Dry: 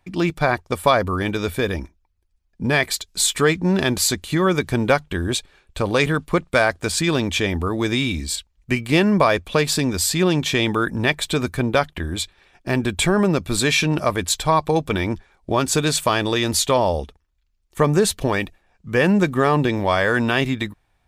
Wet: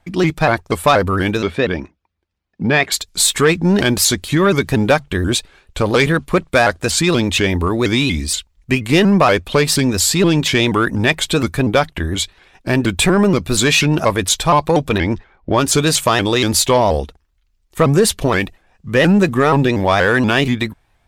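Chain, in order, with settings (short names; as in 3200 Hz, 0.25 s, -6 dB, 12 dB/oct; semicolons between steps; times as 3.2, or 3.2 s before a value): 14.98–15.64 low-pass opened by the level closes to 1700 Hz, open at -14.5 dBFS; soft clip -9 dBFS, distortion -18 dB; 1.42–2.92 BPF 120–3900 Hz; shaped vibrato saw up 4.2 Hz, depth 160 cents; gain +6 dB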